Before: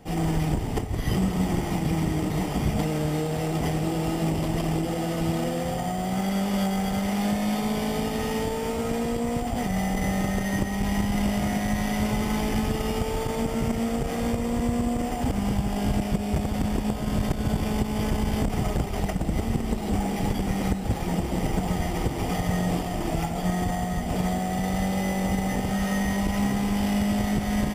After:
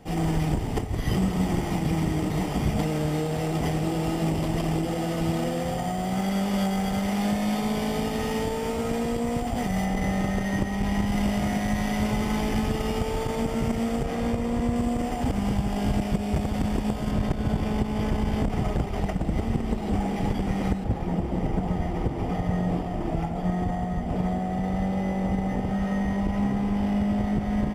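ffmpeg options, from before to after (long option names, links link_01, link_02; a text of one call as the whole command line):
ffmpeg -i in.wav -af "asetnsamples=nb_out_samples=441:pad=0,asendcmd='9.85 lowpass f 4300;11.07 lowpass f 7200;14.04 lowpass f 3800;14.76 lowpass f 6600;17.11 lowpass f 2900;20.84 lowpass f 1100',lowpass=frequency=10000:poles=1" out.wav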